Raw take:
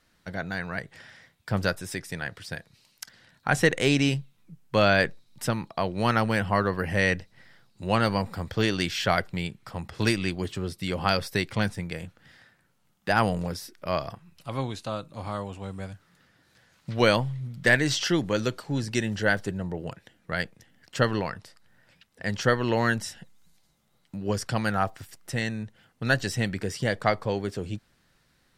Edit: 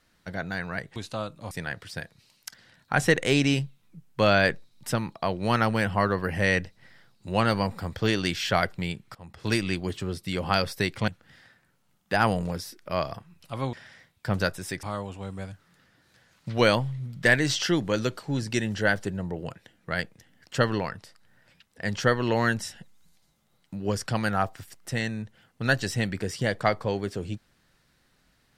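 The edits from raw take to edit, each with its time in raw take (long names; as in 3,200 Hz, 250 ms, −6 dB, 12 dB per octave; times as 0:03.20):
0:00.96–0:02.06: swap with 0:14.69–0:15.24
0:09.70–0:10.17: fade in, from −19 dB
0:11.63–0:12.04: remove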